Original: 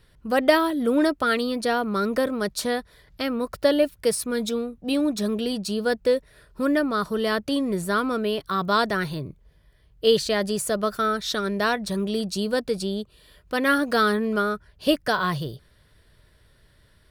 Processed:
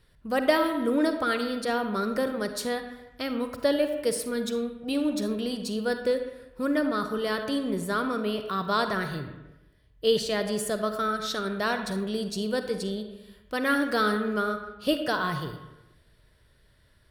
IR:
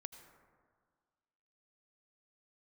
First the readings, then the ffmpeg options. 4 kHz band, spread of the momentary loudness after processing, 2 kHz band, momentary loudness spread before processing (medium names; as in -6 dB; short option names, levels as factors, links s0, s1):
-4.0 dB, 8 LU, -3.5 dB, 7 LU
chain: -filter_complex "[1:a]atrim=start_sample=2205,asetrate=79380,aresample=44100[s0];[0:a][s0]afir=irnorm=-1:irlink=0,volume=2"